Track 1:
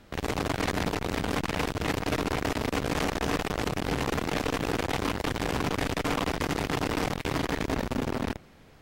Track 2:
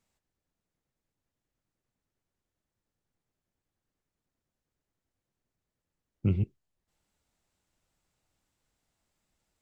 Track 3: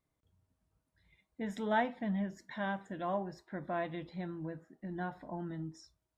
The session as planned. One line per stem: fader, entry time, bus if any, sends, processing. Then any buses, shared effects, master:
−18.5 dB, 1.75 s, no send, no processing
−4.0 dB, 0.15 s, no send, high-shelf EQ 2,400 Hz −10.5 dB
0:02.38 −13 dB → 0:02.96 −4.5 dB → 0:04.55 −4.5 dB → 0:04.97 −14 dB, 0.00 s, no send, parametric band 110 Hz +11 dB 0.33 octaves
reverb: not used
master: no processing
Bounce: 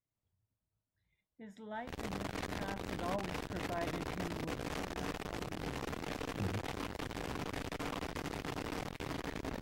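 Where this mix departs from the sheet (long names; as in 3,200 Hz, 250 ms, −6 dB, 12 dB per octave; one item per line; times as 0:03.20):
stem 1 −18.5 dB → −12.0 dB
stem 2 −4.0 dB → −12.5 dB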